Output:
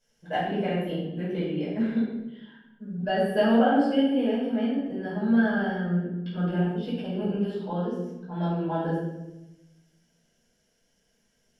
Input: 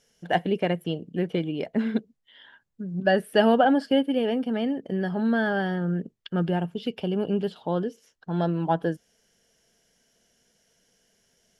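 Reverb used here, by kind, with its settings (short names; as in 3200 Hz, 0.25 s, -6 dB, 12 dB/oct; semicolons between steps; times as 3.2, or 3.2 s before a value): shoebox room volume 380 m³, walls mixed, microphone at 5.2 m; gain -15.5 dB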